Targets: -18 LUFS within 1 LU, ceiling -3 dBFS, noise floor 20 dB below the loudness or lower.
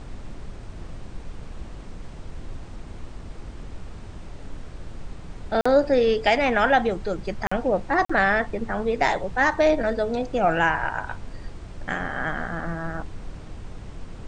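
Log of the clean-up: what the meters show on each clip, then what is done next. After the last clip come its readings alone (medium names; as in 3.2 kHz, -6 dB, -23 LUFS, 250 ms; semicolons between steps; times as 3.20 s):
dropouts 3; longest dropout 45 ms; noise floor -40 dBFS; noise floor target -43 dBFS; loudness -23.0 LUFS; peak level -6.0 dBFS; loudness target -18.0 LUFS
-> interpolate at 5.61/7.47/8.05 s, 45 ms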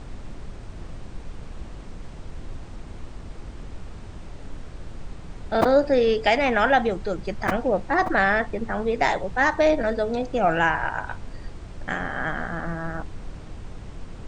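dropouts 0; noise floor -40 dBFS; noise floor target -43 dBFS
-> noise print and reduce 6 dB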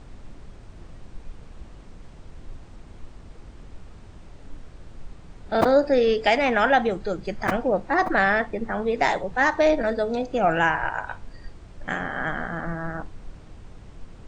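noise floor -46 dBFS; loudness -23.0 LUFS; peak level -6.0 dBFS; loudness target -18.0 LUFS
-> trim +5 dB; peak limiter -3 dBFS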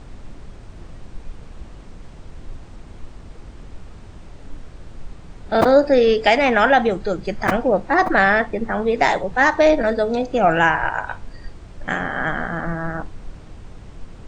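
loudness -18.0 LUFS; peak level -3.0 dBFS; noise floor -41 dBFS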